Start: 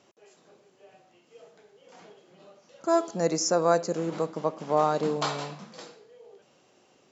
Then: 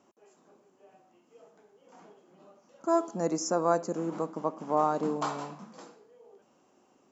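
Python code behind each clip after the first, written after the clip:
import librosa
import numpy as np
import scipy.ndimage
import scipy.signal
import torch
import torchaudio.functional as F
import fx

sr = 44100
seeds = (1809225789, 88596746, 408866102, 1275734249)

y = fx.graphic_eq(x, sr, hz=(125, 250, 500, 1000, 2000, 4000), db=(-7, 6, -4, 4, -5, -10))
y = y * 10.0 ** (-2.5 / 20.0)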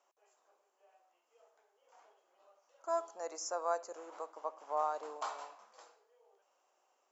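y = scipy.signal.sosfilt(scipy.signal.butter(4, 550.0, 'highpass', fs=sr, output='sos'), x)
y = y * 10.0 ** (-7.0 / 20.0)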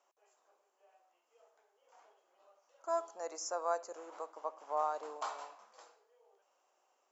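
y = x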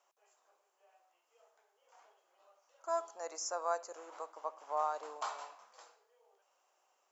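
y = fx.low_shelf(x, sr, hz=460.0, db=-9.0)
y = y * 10.0 ** (2.0 / 20.0)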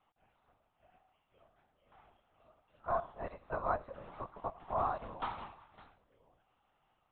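y = fx.lpc_vocoder(x, sr, seeds[0], excitation='whisper', order=10)
y = y * 10.0 ** (1.0 / 20.0)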